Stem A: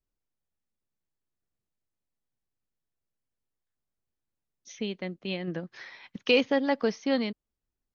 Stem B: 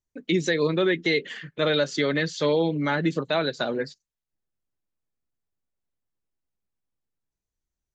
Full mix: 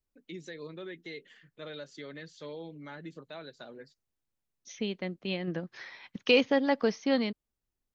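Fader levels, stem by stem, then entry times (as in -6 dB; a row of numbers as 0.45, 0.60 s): -0.5, -20.0 dB; 0.00, 0.00 s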